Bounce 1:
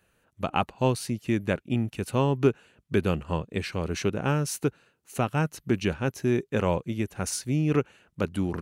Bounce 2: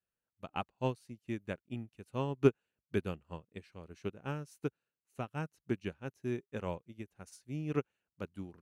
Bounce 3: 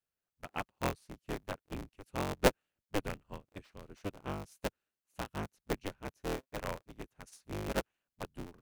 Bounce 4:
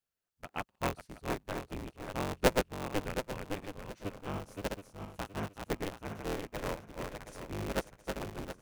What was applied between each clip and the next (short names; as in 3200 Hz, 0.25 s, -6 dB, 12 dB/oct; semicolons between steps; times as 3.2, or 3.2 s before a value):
upward expander 2.5:1, over -33 dBFS; gain -2.5 dB
cycle switcher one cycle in 3, inverted; gain -1 dB
regenerating reverse delay 0.361 s, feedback 50%, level -4 dB